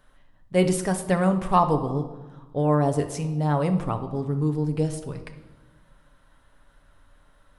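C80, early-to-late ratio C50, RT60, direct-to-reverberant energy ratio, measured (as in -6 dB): 13.0 dB, 11.0 dB, 1.2 s, 5.5 dB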